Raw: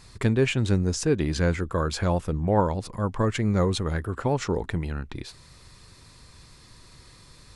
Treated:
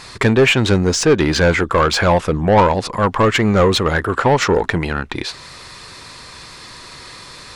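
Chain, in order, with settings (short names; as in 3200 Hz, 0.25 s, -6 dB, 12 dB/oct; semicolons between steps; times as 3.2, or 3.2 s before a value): dynamic EQ 9500 Hz, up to -4 dB, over -57 dBFS, Q 2; overdrive pedal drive 19 dB, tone 3500 Hz, clips at -10 dBFS; gain +7 dB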